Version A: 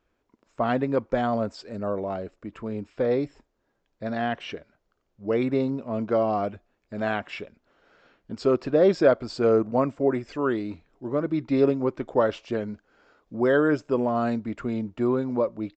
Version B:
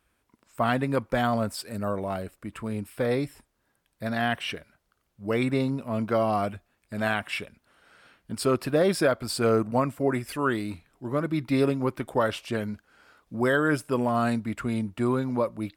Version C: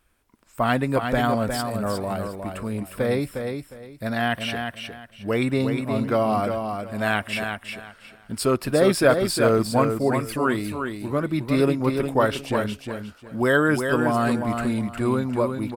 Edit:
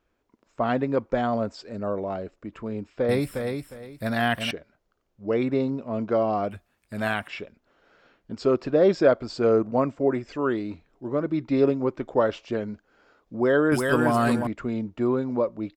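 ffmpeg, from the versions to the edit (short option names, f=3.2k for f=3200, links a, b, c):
-filter_complex "[2:a]asplit=2[a][b];[0:a]asplit=4[c][d][e][f];[c]atrim=end=3.092[g];[a]atrim=start=3.088:end=4.512[h];[d]atrim=start=4.508:end=6.512[i];[1:a]atrim=start=6.508:end=7.282[j];[e]atrim=start=7.278:end=13.722[k];[b]atrim=start=13.718:end=14.472[l];[f]atrim=start=14.468[m];[g][h]acrossfade=d=0.004:c1=hsin:c2=hsin[n];[n][i]acrossfade=d=0.004:c1=hsin:c2=hsin[o];[o][j]acrossfade=d=0.004:c1=hsin:c2=hsin[p];[p][k]acrossfade=d=0.004:c1=hsin:c2=hsin[q];[q][l]acrossfade=d=0.004:c1=hsin:c2=hsin[r];[r][m]acrossfade=d=0.004:c1=hsin:c2=hsin"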